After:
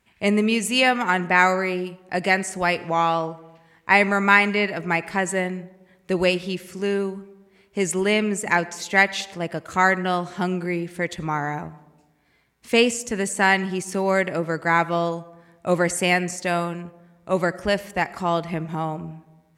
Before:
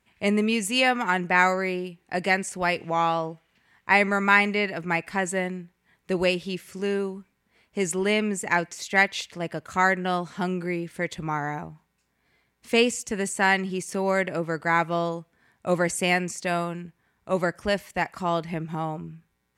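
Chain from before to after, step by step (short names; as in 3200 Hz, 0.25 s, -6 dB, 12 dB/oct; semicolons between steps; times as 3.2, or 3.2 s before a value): digital reverb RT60 1.2 s, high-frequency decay 0.3×, pre-delay 40 ms, DRR 18.5 dB; gain +3 dB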